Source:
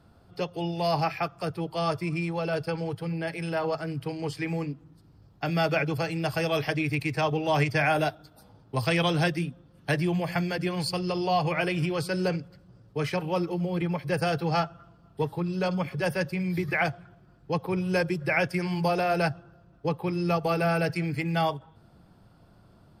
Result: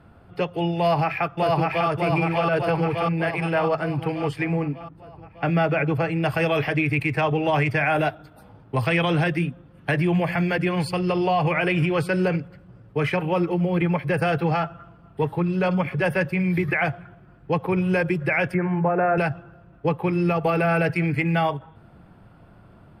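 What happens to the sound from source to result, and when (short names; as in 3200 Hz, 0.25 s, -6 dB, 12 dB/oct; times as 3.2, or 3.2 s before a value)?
0.77–1.88 echo throw 0.6 s, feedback 60%, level -0.5 dB
4.44–6.23 high shelf 2200 Hz -8 dB
18.54–19.18 Chebyshev band-pass 110–1700 Hz, order 3
whole clip: resonant high shelf 3500 Hz -12 dB, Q 1.5; limiter -19.5 dBFS; bell 10000 Hz +5.5 dB 1.1 oct; gain +6.5 dB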